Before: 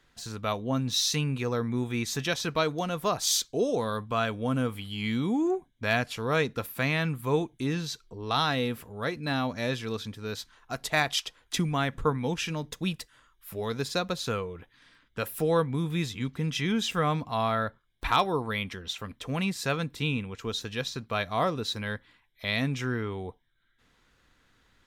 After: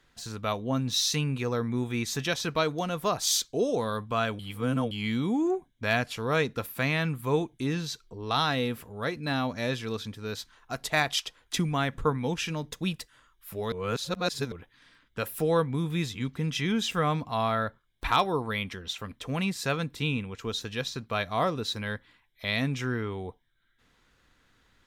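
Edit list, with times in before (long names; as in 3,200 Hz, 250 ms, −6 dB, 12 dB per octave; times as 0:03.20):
0:04.39–0:04.91: reverse
0:13.72–0:14.52: reverse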